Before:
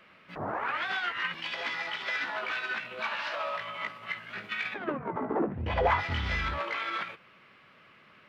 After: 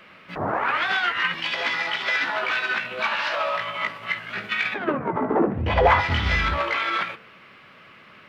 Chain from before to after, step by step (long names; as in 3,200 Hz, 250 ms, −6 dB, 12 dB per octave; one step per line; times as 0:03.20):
hum removal 74.53 Hz, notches 26
level +9 dB